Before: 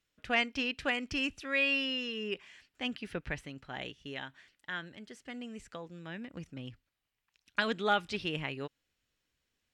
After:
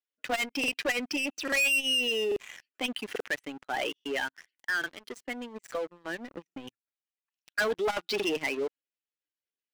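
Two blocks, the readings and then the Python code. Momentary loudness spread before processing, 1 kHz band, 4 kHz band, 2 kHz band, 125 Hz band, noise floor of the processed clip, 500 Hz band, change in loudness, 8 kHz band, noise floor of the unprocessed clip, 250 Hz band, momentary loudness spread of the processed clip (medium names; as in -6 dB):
16 LU, +1.0 dB, +5.0 dB, +4.5 dB, -9.0 dB, under -85 dBFS, +6.5 dB, +4.0 dB, +15.5 dB, -84 dBFS, +1.0 dB, 14 LU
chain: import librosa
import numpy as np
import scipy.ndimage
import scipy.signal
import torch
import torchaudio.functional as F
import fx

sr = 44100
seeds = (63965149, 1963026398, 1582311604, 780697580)

y = fx.spec_expand(x, sr, power=1.7)
y = scipy.signal.sosfilt(scipy.signal.butter(4, 310.0, 'highpass', fs=sr, output='sos'), y)
y = fx.leveller(y, sr, passes=5)
y = fx.buffer_crackle(y, sr, first_s=0.59, period_s=0.84, block=2048, kind='repeat')
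y = fx.transformer_sat(y, sr, knee_hz=330.0)
y = y * librosa.db_to_amplitude(-5.0)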